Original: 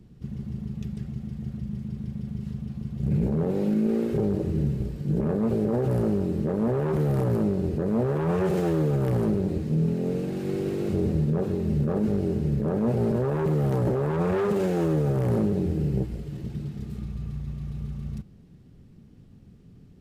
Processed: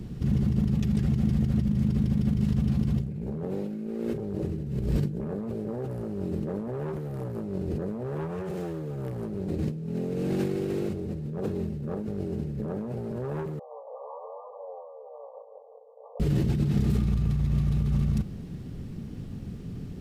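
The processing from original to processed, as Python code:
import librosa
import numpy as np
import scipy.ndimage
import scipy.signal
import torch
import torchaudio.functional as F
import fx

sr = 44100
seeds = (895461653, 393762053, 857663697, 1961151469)

y = fx.over_compress(x, sr, threshold_db=-35.0, ratio=-1.0)
y = fx.brickwall_bandpass(y, sr, low_hz=450.0, high_hz=1200.0, at=(13.59, 16.2))
y = y * librosa.db_to_amplitude(5.5)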